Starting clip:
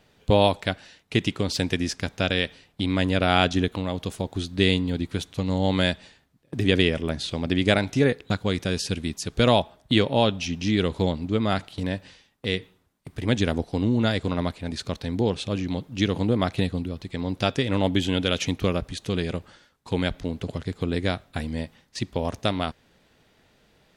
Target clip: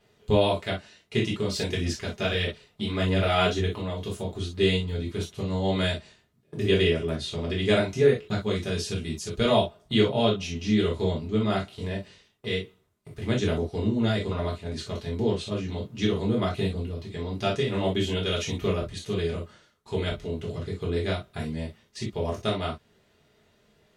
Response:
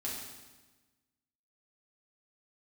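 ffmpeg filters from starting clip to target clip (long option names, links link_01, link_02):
-filter_complex "[1:a]atrim=start_sample=2205,afade=type=out:start_time=0.16:duration=0.01,atrim=end_sample=7497,asetrate=70560,aresample=44100[link_01];[0:a][link_01]afir=irnorm=-1:irlink=0,asplit=3[link_02][link_03][link_04];[link_02]afade=type=out:start_time=1.47:duration=0.02[link_05];[link_03]aphaser=in_gain=1:out_gain=1:delay=5:decay=0.37:speed=1.6:type=sinusoidal,afade=type=in:start_time=1.47:duration=0.02,afade=type=out:start_time=3.67:duration=0.02[link_06];[link_04]afade=type=in:start_time=3.67:duration=0.02[link_07];[link_05][link_06][link_07]amix=inputs=3:normalize=0"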